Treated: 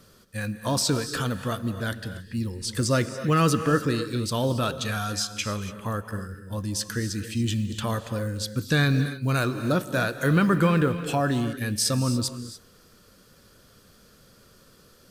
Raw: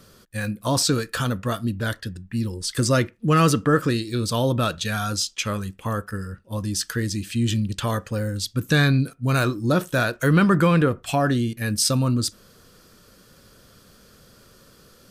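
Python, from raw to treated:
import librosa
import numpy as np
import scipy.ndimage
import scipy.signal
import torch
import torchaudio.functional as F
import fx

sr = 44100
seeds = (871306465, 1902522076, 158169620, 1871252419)

y = fx.rev_gated(x, sr, seeds[0], gate_ms=310, shape='rising', drr_db=10.5)
y = fx.quant_companded(y, sr, bits=8)
y = F.gain(torch.from_numpy(y), -3.5).numpy()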